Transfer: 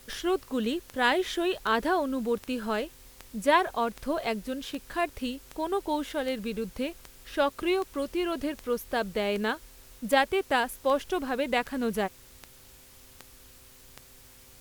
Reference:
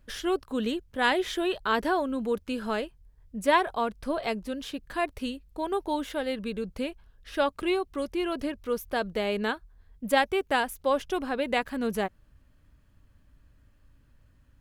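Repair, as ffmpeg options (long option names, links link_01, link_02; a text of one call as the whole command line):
ffmpeg -i in.wav -af "adeclick=threshold=4,bandreject=frequency=128.8:width_type=h:width=4,bandreject=frequency=257.6:width_type=h:width=4,bandreject=frequency=386.4:width_type=h:width=4,bandreject=frequency=515.2:width_type=h:width=4,afwtdn=0.002" out.wav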